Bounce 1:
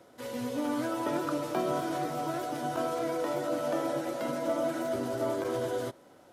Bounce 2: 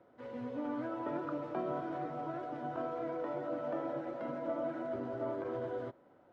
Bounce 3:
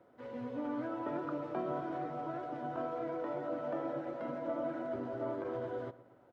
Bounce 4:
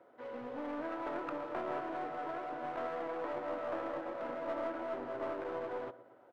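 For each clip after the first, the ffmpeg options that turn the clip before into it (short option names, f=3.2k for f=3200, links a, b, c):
-af "lowpass=1.8k,volume=-6.5dB"
-filter_complex "[0:a]asplit=2[a][b];[b]adelay=116,lowpass=f=1.8k:p=1,volume=-16.5dB,asplit=2[c][d];[d]adelay=116,lowpass=f=1.8k:p=1,volume=0.47,asplit=2[e][f];[f]adelay=116,lowpass=f=1.8k:p=1,volume=0.47,asplit=2[g][h];[h]adelay=116,lowpass=f=1.8k:p=1,volume=0.47[i];[a][c][e][g][i]amix=inputs=5:normalize=0"
-af "aeval=exprs='clip(val(0),-1,0.00562)':c=same,bass=f=250:g=-14,treble=f=4k:g=-8,volume=3.5dB"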